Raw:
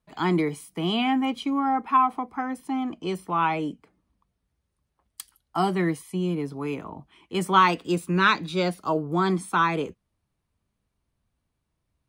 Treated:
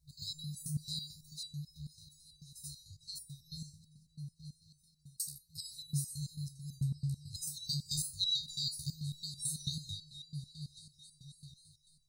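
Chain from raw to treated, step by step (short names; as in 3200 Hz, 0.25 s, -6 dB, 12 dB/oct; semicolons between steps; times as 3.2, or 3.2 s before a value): repeats that get brighter 0.271 s, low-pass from 400 Hz, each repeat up 1 oct, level -6 dB; FFT band-reject 160–3700 Hz; stepped resonator 9.1 Hz 70–790 Hz; gain +16.5 dB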